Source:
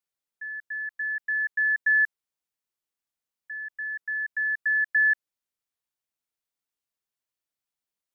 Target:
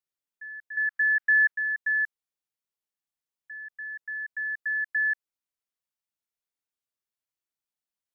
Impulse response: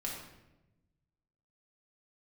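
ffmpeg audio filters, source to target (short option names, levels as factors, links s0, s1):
-filter_complex "[0:a]asettb=1/sr,asplit=3[s0][s1][s2];[s0]atrim=end=0.774[s3];[s1]atrim=start=0.77:end=1.52,asetpts=PTS-STARTPTS,afade=t=in:d=0.004:c=qsin,afade=t=out:st=0.746:d=0.004:c=qsin,equalizer=f=1600:w=1.5:g=12[s4];[s2]atrim=start=1.516[s5];[s3][s4]acrossfade=d=0.004:c1=hsin:c2=qsin[s6];[s6][s5]acrossfade=d=0.004:c1=qsin:c2=hsin,volume=0.596"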